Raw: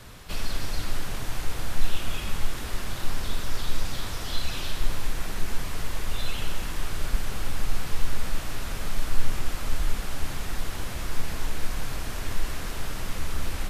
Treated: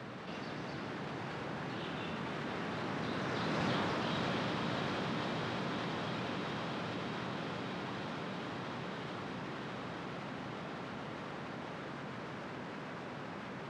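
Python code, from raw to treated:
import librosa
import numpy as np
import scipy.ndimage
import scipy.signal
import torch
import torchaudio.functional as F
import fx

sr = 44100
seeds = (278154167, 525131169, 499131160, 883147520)

p1 = fx.doppler_pass(x, sr, speed_mps=22, closest_m=2.3, pass_at_s=3.69)
p2 = scipy.signal.sosfilt(scipy.signal.butter(4, 150.0, 'highpass', fs=sr, output='sos'), p1)
p3 = fx.spacing_loss(p2, sr, db_at_10k=34)
p4 = p3 + fx.echo_diffused(p3, sr, ms=597, feedback_pct=68, wet_db=-6.0, dry=0)
p5 = fx.env_flatten(p4, sr, amount_pct=70)
y = F.gain(torch.from_numpy(p5), 8.0).numpy()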